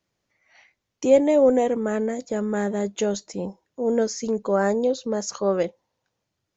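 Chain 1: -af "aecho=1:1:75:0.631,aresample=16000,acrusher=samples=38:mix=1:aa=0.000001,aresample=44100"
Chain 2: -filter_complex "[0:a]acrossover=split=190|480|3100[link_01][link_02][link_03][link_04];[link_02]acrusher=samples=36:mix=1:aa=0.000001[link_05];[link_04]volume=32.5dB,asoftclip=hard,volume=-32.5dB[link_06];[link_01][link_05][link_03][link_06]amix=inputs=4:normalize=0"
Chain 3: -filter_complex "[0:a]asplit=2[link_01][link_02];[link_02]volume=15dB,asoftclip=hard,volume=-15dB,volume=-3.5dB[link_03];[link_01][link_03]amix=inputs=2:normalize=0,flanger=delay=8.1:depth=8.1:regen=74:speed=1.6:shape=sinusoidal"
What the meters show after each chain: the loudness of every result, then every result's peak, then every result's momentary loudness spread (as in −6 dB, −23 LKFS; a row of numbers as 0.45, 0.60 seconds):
−22.5, −24.5, −24.0 LKFS; −4.0, −6.5, −7.5 dBFS; 14, 11, 11 LU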